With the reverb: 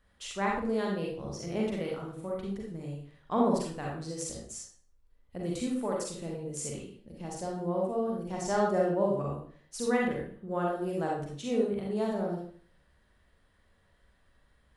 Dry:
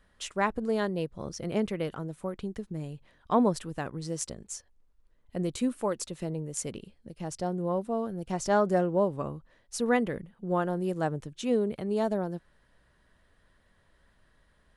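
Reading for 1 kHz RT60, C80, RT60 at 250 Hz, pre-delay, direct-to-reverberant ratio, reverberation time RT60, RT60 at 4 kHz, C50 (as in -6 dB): 0.45 s, 6.5 dB, 0.55 s, 37 ms, -3.0 dB, 0.50 s, 0.40 s, 1.0 dB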